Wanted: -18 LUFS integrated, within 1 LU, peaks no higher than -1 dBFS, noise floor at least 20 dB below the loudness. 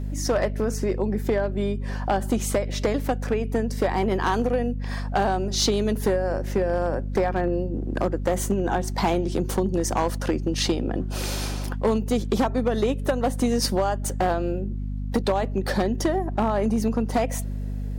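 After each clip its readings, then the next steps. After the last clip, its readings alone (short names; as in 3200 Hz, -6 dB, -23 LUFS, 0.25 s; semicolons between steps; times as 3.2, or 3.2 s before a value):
clipped 1.3%; flat tops at -15.0 dBFS; hum 50 Hz; harmonics up to 250 Hz; hum level -26 dBFS; loudness -25.0 LUFS; peak -15.0 dBFS; loudness target -18.0 LUFS
-> clip repair -15 dBFS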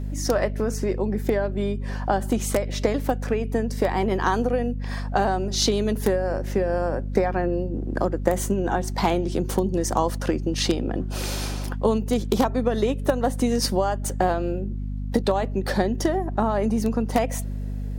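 clipped 0.0%; hum 50 Hz; harmonics up to 250 Hz; hum level -26 dBFS
-> notches 50/100/150/200/250 Hz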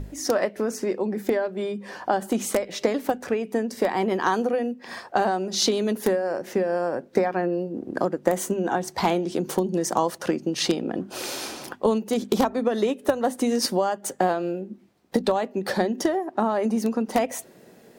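hum none; loudness -25.5 LUFS; peak -5.5 dBFS; loudness target -18.0 LUFS
-> gain +7.5 dB; limiter -1 dBFS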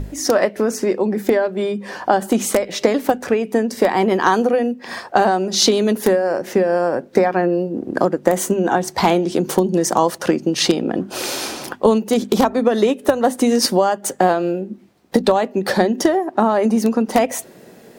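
loudness -18.0 LUFS; peak -1.0 dBFS; noise floor -44 dBFS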